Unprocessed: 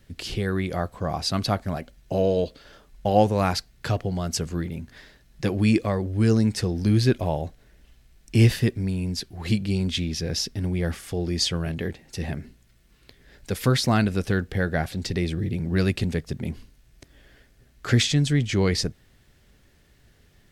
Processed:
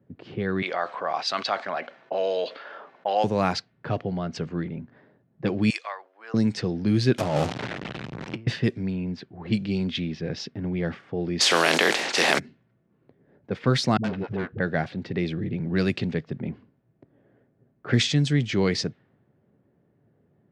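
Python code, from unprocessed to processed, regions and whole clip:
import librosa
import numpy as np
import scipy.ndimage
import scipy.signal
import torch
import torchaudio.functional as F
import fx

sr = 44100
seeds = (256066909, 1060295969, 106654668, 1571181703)

y = fx.chain(x, sr, fx.highpass(hz=770.0, slope=12),
    fx.resample_bad(factor=2, down='filtered', up='hold'),
    fx.env_flatten(amount_pct=50), at=(0.62, 3.24))
y = fx.chain(y, sr, fx.highpass(hz=840.0, slope=24),
    fx.high_shelf(hz=5400.0, db=9.5), at=(5.7, 6.34))
y = fx.chain(y, sr, fx.zero_step(step_db=-24.5),
    fx.high_shelf(hz=11000.0, db=7.0),
    fx.over_compress(threshold_db=-23.0, ratio=-0.5), at=(7.18, 8.47))
y = fx.spec_flatten(y, sr, power=0.52, at=(11.39, 12.38), fade=0.02)
y = fx.highpass(y, sr, hz=430.0, slope=12, at=(11.39, 12.38), fade=0.02)
y = fx.env_flatten(y, sr, amount_pct=70, at=(11.39, 12.38), fade=0.02)
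y = fx.chain(y, sr, fx.air_absorb(metres=160.0),
    fx.clip_hard(threshold_db=-23.0),
    fx.dispersion(late='highs', ms=70.0, hz=310.0), at=(13.97, 14.6))
y = scipy.signal.sosfilt(scipy.signal.butter(4, 120.0, 'highpass', fs=sr, output='sos'), y)
y = fx.env_lowpass(y, sr, base_hz=670.0, full_db=-18.0)
y = scipy.signal.sosfilt(scipy.signal.butter(2, 6000.0, 'lowpass', fs=sr, output='sos'), y)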